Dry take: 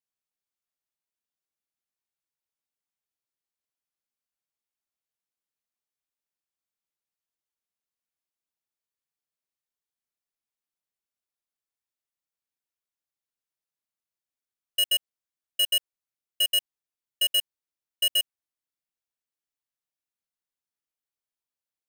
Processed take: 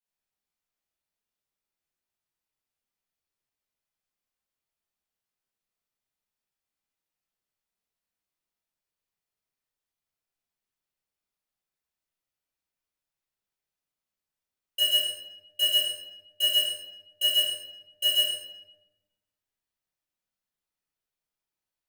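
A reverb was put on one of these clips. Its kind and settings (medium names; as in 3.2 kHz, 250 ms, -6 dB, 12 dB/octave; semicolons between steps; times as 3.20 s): simulated room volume 410 m³, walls mixed, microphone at 4.9 m; trim -8.5 dB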